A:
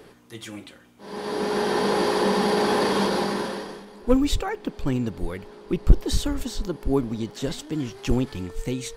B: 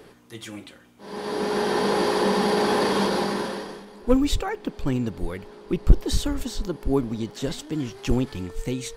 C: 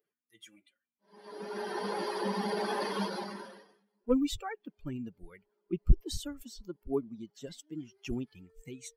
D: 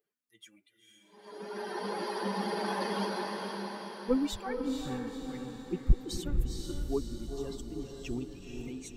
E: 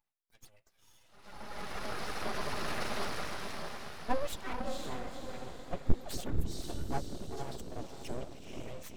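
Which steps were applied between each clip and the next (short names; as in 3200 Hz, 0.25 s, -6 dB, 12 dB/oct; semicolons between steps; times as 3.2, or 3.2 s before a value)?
nothing audible
per-bin expansion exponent 2; gain -6 dB
diffused feedback echo 0.485 s, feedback 54%, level -4 dB; gain -1 dB
full-wave rectifier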